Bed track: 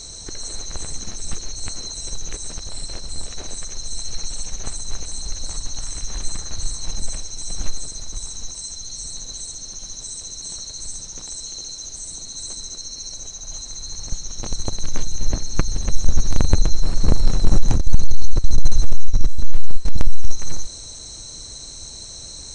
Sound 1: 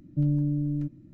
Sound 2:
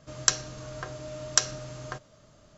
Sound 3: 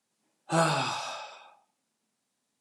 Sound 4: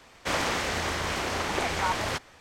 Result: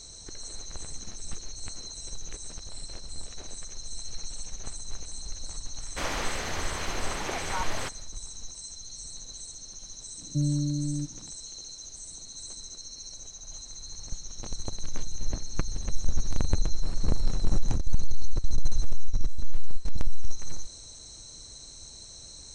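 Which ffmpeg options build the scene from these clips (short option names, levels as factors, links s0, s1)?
-filter_complex "[0:a]volume=0.335[s0];[4:a]atrim=end=2.4,asetpts=PTS-STARTPTS,volume=0.562,afade=t=in:d=0.1,afade=t=out:st=2.3:d=0.1,adelay=5710[s1];[1:a]atrim=end=1.13,asetpts=PTS-STARTPTS,volume=0.794,afade=t=in:d=0.004:c=hsin,afade=t=out:st=1.126:d=0.004:c=hsin,adelay=448938S[s2];[s0][s1][s2]amix=inputs=3:normalize=0"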